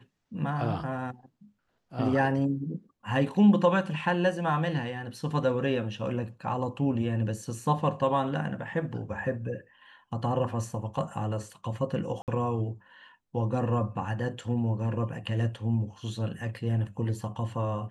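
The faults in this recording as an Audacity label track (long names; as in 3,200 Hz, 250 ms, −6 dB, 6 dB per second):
12.220000	12.280000	drop-out 58 ms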